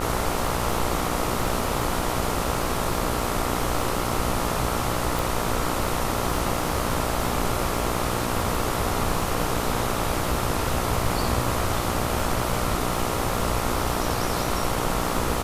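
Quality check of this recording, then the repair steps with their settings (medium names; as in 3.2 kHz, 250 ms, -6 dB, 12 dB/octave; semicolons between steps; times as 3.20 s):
buzz 60 Hz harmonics 23 -29 dBFS
crackle 27 per s -28 dBFS
5.19 s: pop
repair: de-click; de-hum 60 Hz, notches 23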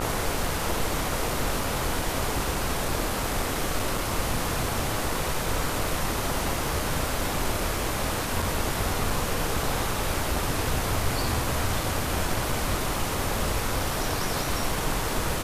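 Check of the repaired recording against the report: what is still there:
nothing left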